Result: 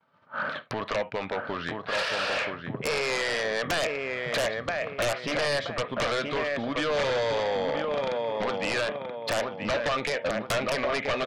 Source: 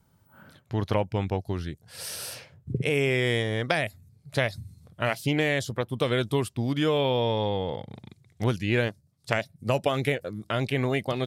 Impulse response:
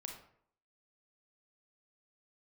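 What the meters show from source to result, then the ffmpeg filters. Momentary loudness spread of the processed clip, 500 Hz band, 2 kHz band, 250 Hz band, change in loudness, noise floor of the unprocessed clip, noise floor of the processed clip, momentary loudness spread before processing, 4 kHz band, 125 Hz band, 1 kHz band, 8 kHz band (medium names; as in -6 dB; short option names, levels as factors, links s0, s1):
6 LU, +0.5 dB, +2.0 dB, -5.5 dB, -1.0 dB, -64 dBFS, -44 dBFS, 12 LU, +2.0 dB, -12.0 dB, +2.5 dB, +2.0 dB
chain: -filter_complex "[0:a]agate=range=0.0224:threshold=0.00251:ratio=3:detection=peak,acompressor=threshold=0.01:ratio=8,highpass=310,equalizer=f=350:t=q:w=4:g=-7,equalizer=f=600:t=q:w=4:g=7,equalizer=f=1200:t=q:w=4:g=10,equalizer=f=1700:t=q:w=4:g=5,equalizer=f=2500:t=q:w=4:g=4,lowpass=f=3800:w=0.5412,lowpass=f=3800:w=1.3066,asplit=2[s0][s1];[s1]adelay=978,lowpass=f=2400:p=1,volume=0.501,asplit=2[s2][s3];[s3]adelay=978,lowpass=f=2400:p=1,volume=0.4,asplit=2[s4][s5];[s5]adelay=978,lowpass=f=2400:p=1,volume=0.4,asplit=2[s6][s7];[s7]adelay=978,lowpass=f=2400:p=1,volume=0.4,asplit=2[s8][s9];[s9]adelay=978,lowpass=f=2400:p=1,volume=0.4[s10];[s0][s2][s4][s6][s8][s10]amix=inputs=6:normalize=0,asplit=2[s11][s12];[1:a]atrim=start_sample=2205,atrim=end_sample=3528[s13];[s12][s13]afir=irnorm=-1:irlink=0,volume=0.501[s14];[s11][s14]amix=inputs=2:normalize=0,aeval=exprs='0.106*sin(PI/2*6.31*val(0)/0.106)':c=same,volume=0.708"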